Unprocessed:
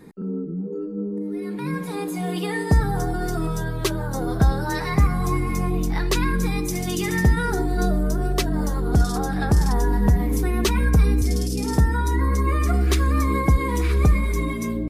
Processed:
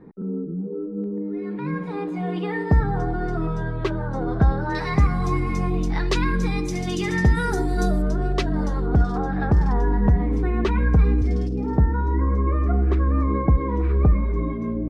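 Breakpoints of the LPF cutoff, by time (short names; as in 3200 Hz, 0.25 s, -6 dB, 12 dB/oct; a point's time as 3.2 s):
1200 Hz
from 1.04 s 2200 Hz
from 4.75 s 5000 Hz
from 7.35 s 9600 Hz
from 8.02 s 3800 Hz
from 8.86 s 2000 Hz
from 11.49 s 1100 Hz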